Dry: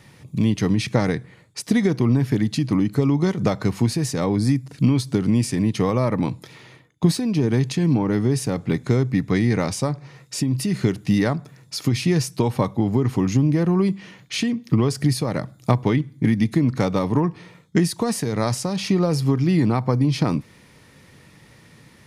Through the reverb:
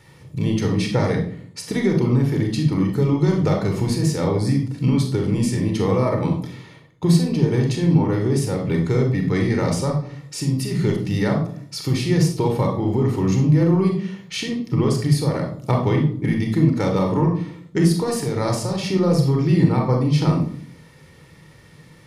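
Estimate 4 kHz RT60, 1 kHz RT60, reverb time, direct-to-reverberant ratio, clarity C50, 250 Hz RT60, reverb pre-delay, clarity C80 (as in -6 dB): 0.40 s, 0.50 s, 0.55 s, 1.5 dB, 5.5 dB, 0.75 s, 31 ms, 10.0 dB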